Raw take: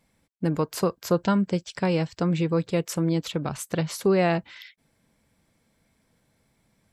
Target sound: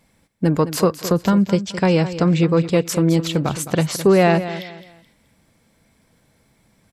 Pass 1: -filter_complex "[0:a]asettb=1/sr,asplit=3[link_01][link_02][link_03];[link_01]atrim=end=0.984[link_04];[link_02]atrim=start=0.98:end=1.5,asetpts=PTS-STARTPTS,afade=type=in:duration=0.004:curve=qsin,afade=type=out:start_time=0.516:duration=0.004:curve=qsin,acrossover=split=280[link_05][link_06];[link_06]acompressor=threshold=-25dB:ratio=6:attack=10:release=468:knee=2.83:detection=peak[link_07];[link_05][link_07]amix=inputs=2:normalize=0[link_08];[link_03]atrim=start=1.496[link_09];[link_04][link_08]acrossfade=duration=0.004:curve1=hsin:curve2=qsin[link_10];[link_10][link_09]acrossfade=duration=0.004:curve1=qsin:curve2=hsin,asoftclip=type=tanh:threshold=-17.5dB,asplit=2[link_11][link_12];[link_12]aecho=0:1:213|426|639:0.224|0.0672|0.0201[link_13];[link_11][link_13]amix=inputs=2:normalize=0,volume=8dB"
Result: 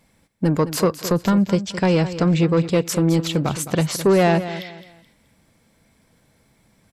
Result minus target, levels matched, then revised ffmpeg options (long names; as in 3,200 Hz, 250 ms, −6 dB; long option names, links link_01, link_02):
soft clipping: distortion +11 dB
-filter_complex "[0:a]asettb=1/sr,asplit=3[link_01][link_02][link_03];[link_01]atrim=end=0.984[link_04];[link_02]atrim=start=0.98:end=1.5,asetpts=PTS-STARTPTS,afade=type=in:duration=0.004:curve=qsin,afade=type=out:start_time=0.516:duration=0.004:curve=qsin,acrossover=split=280[link_05][link_06];[link_06]acompressor=threshold=-25dB:ratio=6:attack=10:release=468:knee=2.83:detection=peak[link_07];[link_05][link_07]amix=inputs=2:normalize=0[link_08];[link_03]atrim=start=1.496[link_09];[link_04][link_08]acrossfade=duration=0.004:curve1=hsin:curve2=qsin[link_10];[link_10][link_09]acrossfade=duration=0.004:curve1=qsin:curve2=hsin,asoftclip=type=tanh:threshold=-10.5dB,asplit=2[link_11][link_12];[link_12]aecho=0:1:213|426|639:0.224|0.0672|0.0201[link_13];[link_11][link_13]amix=inputs=2:normalize=0,volume=8dB"